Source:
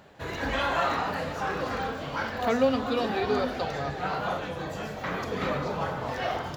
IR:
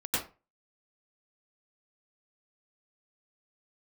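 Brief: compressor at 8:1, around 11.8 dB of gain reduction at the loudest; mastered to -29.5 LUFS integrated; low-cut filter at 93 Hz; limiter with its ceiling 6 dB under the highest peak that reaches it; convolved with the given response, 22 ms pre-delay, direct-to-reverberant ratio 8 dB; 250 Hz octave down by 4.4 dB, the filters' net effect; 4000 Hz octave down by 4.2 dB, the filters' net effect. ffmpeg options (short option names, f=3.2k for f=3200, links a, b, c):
-filter_complex "[0:a]highpass=93,equalizer=f=250:t=o:g=-5,equalizer=f=4k:t=o:g=-5.5,acompressor=threshold=-31dB:ratio=8,alimiter=level_in=4dB:limit=-24dB:level=0:latency=1,volume=-4dB,asplit=2[a][b];[1:a]atrim=start_sample=2205,adelay=22[c];[b][c]afir=irnorm=-1:irlink=0,volume=-15.5dB[d];[a][d]amix=inputs=2:normalize=0,volume=7dB"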